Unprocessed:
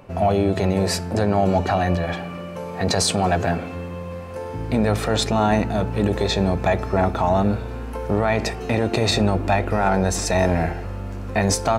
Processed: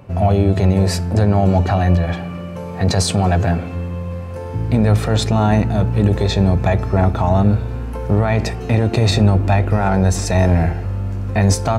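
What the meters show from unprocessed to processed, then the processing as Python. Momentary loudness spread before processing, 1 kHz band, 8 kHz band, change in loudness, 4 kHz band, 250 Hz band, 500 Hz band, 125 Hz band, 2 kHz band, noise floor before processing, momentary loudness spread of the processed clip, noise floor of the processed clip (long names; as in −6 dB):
12 LU, +0.5 dB, 0.0 dB, +4.5 dB, 0.0 dB, +4.5 dB, +1.0 dB, +9.5 dB, 0.0 dB, −32 dBFS, 11 LU, −28 dBFS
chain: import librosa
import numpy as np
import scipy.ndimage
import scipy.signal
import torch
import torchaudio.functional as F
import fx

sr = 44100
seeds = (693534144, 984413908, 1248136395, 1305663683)

y = fx.peak_eq(x, sr, hz=100.0, db=10.5, octaves=1.8)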